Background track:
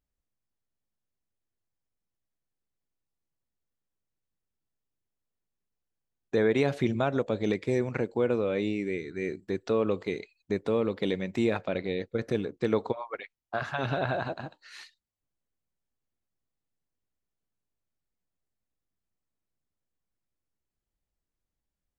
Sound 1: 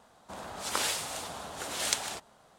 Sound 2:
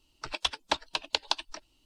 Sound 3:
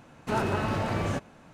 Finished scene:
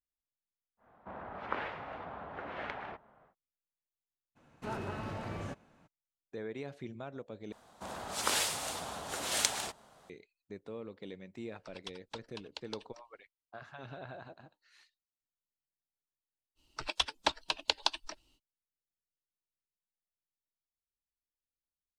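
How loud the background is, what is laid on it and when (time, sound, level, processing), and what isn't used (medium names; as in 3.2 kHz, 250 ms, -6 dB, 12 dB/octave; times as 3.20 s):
background track -17 dB
0.77 s: add 1 -2.5 dB, fades 0.10 s + low-pass 2.1 kHz 24 dB/octave
4.35 s: add 3 -11.5 dB, fades 0.02 s + treble shelf 6.6 kHz -3 dB
7.52 s: replace with 1 -0.5 dB
11.42 s: add 2 -17.5 dB
16.55 s: add 2 -2 dB, fades 0.05 s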